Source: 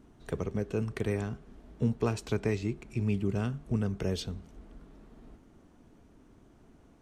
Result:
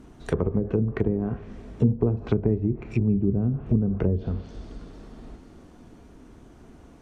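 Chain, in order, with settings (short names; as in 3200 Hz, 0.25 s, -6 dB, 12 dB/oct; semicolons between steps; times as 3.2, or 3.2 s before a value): two-slope reverb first 0.45 s, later 4.3 s, from -21 dB, DRR 10 dB; treble ducked by the level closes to 360 Hz, closed at -27 dBFS; gain +9 dB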